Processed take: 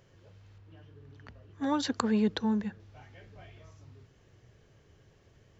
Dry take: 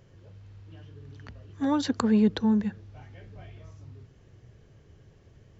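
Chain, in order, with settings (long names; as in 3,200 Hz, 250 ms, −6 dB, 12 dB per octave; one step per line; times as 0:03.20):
low-shelf EQ 390 Hz −7.5 dB
0:00.58–0:02.80: one half of a high-frequency compander decoder only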